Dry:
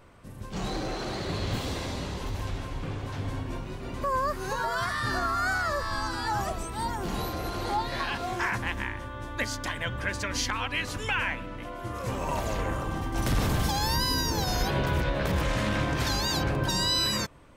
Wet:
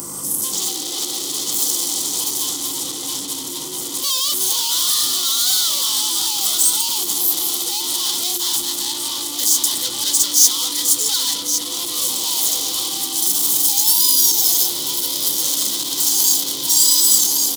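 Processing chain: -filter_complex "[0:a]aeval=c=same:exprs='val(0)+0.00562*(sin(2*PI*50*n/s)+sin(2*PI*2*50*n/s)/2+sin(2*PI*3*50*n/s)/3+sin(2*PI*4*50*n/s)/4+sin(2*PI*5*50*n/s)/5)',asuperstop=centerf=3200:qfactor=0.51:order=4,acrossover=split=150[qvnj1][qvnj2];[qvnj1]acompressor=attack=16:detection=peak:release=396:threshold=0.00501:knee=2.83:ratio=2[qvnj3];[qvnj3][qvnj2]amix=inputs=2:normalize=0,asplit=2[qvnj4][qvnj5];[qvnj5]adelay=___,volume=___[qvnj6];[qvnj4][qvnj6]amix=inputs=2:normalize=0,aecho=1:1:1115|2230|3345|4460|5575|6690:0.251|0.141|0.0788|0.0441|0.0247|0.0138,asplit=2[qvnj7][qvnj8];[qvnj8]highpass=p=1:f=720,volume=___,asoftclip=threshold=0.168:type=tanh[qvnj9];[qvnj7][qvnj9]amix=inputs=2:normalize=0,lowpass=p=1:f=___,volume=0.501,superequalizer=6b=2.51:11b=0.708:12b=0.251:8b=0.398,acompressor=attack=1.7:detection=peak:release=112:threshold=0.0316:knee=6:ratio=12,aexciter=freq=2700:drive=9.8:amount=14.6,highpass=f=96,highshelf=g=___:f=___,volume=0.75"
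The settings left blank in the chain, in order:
14, 0.422, 70.8, 1900, 10, 11000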